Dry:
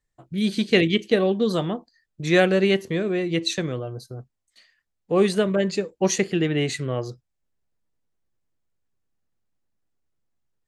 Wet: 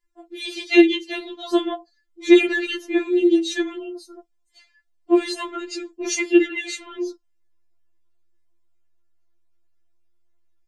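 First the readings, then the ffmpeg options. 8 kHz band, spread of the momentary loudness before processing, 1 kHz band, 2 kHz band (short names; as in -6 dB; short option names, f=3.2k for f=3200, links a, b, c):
0.0 dB, 14 LU, -1.5 dB, +1.5 dB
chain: -af "highshelf=f=9k:g=-7,afftfilt=real='re*4*eq(mod(b,16),0)':imag='im*4*eq(mod(b,16),0)':win_size=2048:overlap=0.75,volume=5dB"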